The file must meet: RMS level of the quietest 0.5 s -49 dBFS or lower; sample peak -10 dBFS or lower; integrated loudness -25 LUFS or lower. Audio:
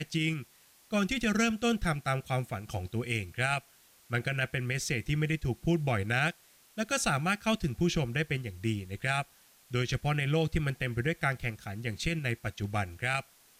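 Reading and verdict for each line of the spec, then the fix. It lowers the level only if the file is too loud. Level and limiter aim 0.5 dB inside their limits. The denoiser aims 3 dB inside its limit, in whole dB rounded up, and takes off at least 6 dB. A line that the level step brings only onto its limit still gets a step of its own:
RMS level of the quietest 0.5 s -61 dBFS: OK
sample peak -17.0 dBFS: OK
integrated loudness -31.5 LUFS: OK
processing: none

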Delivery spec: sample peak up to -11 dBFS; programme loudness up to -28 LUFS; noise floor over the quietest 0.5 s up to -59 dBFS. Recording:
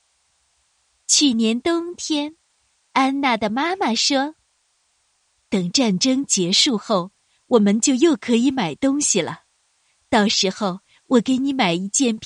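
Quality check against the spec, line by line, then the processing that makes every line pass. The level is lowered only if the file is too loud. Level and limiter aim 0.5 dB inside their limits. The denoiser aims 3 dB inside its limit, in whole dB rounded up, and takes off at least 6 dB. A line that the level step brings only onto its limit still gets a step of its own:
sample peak -4.0 dBFS: fail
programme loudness -19.0 LUFS: fail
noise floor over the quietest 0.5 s -66 dBFS: OK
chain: gain -9.5 dB

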